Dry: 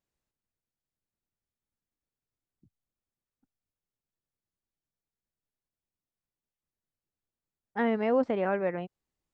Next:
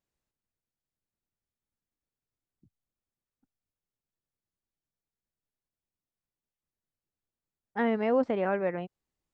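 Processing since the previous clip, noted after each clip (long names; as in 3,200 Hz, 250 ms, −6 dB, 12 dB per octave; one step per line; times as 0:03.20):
no processing that can be heard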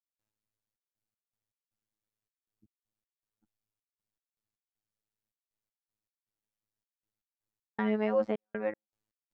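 phases set to zero 107 Hz
gate pattern ".xxx.x.x" 79 BPM −60 dB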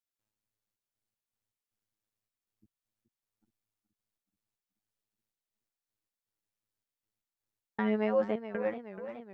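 feedback echo with a swinging delay time 427 ms, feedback 64%, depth 134 cents, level −12 dB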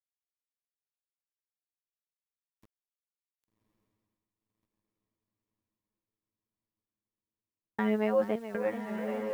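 bit reduction 10 bits
feedback delay with all-pass diffusion 1,149 ms, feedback 55%, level −6 dB
level +1 dB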